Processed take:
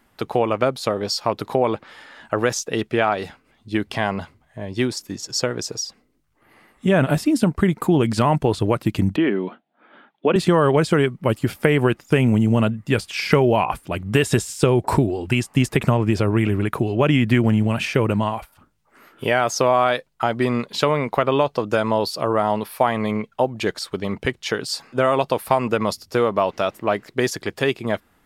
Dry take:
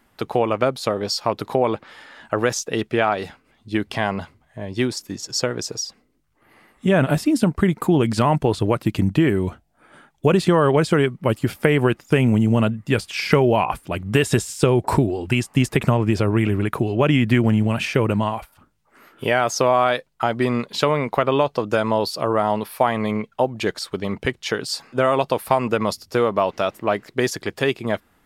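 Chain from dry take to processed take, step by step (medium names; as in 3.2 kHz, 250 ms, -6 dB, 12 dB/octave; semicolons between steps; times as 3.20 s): 9.16–10.36 s: elliptic band-pass 210–3600 Hz, stop band 40 dB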